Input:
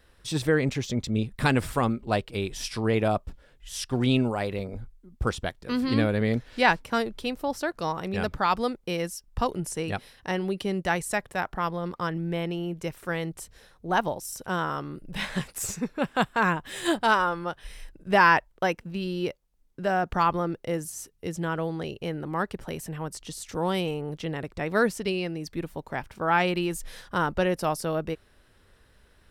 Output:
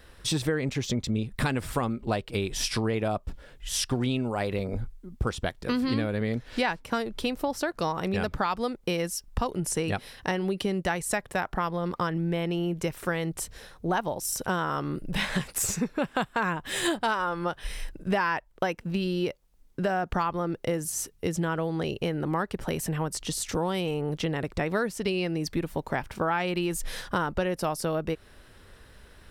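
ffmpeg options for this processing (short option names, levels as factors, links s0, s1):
-af "acompressor=threshold=0.0251:ratio=6,volume=2.37"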